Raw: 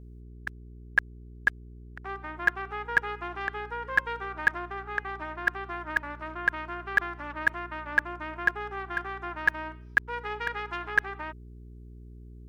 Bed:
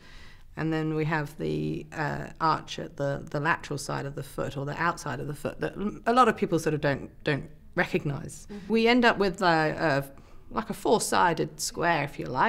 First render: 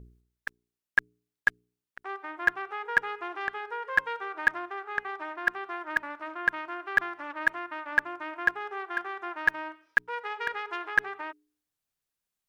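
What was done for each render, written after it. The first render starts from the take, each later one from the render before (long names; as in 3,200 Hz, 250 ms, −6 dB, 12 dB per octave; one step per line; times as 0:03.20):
hum removal 60 Hz, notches 7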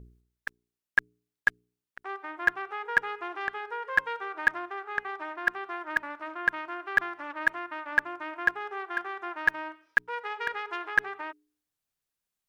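no processing that can be heard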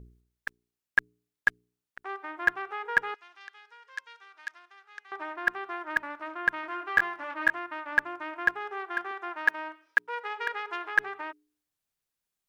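0:03.14–0:05.12: resonant band-pass 5,800 Hz, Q 1.5
0:06.61–0:07.50: double-tracking delay 22 ms −3.5 dB
0:09.11–0:10.99: high-pass filter 290 Hz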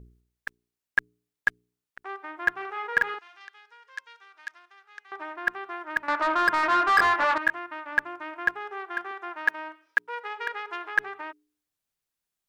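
0:02.52–0:03.45: double-tracking delay 44 ms −2 dB
0:06.08–0:07.38: mid-hump overdrive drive 27 dB, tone 2,200 Hz, clips at −10 dBFS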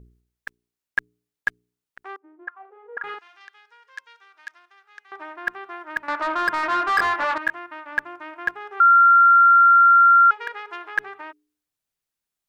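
0:02.16–0:03.04: envelope filter 250–1,300 Hz, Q 5.4, up, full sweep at −21.5 dBFS
0:08.80–0:10.31: beep over 1,380 Hz −9.5 dBFS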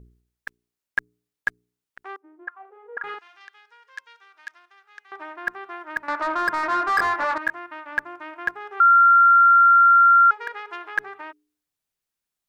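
dynamic equaliser 3,000 Hz, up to −7 dB, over −38 dBFS, Q 1.8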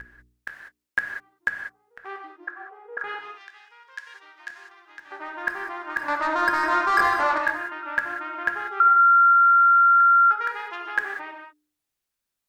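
backwards echo 976 ms −20.5 dB
reverb whose tail is shaped and stops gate 220 ms flat, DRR 3 dB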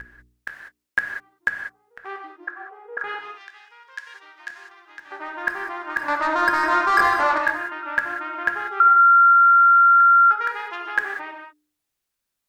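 level +2.5 dB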